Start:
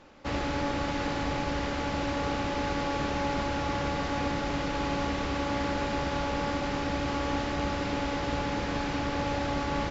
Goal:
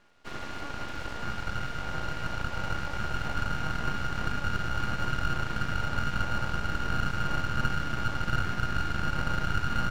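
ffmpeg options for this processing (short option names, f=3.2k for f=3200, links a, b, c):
-af "asubboost=boost=11:cutoff=110,aeval=exprs='val(0)*sin(2*PI*710*n/s)':c=same,aeval=exprs='abs(val(0))':c=same,volume=-4.5dB"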